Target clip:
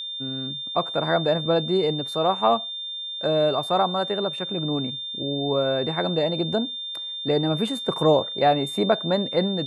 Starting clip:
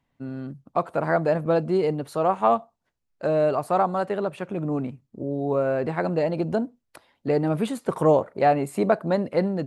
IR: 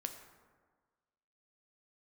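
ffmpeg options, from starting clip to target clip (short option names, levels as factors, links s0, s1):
-af "aeval=exprs='val(0)+0.0316*sin(2*PI*3600*n/s)':c=same"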